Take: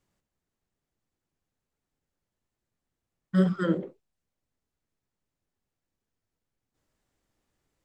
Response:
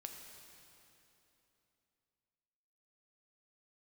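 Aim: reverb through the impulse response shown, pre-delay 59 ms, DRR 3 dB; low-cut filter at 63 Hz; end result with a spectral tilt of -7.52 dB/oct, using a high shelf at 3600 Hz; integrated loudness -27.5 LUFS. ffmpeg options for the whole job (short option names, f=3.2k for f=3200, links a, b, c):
-filter_complex "[0:a]highpass=63,highshelf=f=3.6k:g=5.5,asplit=2[a][b];[1:a]atrim=start_sample=2205,adelay=59[c];[b][c]afir=irnorm=-1:irlink=0,volume=1dB[d];[a][d]amix=inputs=2:normalize=0,volume=-2.5dB"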